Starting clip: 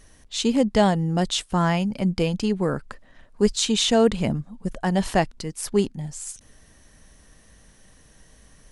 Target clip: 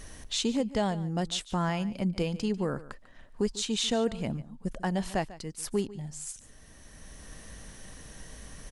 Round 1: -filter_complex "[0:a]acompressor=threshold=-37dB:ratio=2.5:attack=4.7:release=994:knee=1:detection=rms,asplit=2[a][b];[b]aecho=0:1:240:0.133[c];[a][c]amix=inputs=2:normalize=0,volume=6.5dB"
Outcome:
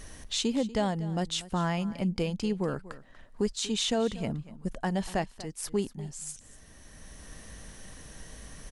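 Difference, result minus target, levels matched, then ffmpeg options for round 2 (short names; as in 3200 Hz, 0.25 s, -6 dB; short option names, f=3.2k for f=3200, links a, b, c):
echo 95 ms late
-filter_complex "[0:a]acompressor=threshold=-37dB:ratio=2.5:attack=4.7:release=994:knee=1:detection=rms,asplit=2[a][b];[b]aecho=0:1:145:0.133[c];[a][c]amix=inputs=2:normalize=0,volume=6.5dB"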